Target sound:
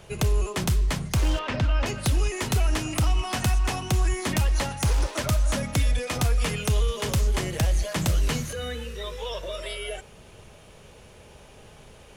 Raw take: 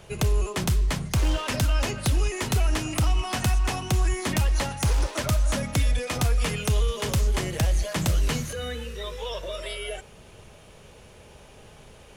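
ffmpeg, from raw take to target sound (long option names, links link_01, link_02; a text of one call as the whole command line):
ffmpeg -i in.wav -filter_complex "[0:a]asettb=1/sr,asplit=3[link_01][link_02][link_03];[link_01]atrim=end=1.394[link_04];[link_02]atrim=start=1.39:end=1.86,asetpts=PTS-STARTPTS,afade=type=in:duration=0.004:curve=qsin,afade=type=out:start_time=0.466:duration=0.004:curve=qsin,lowpass=3100[link_05];[link_03]atrim=start=1.856[link_06];[link_04][link_05]acrossfade=duration=0.004:curve1=hsin:curve2=qsin[link_07];[link_07][link_06]acrossfade=duration=0.004:curve1=qsin:curve2=hsin" out.wav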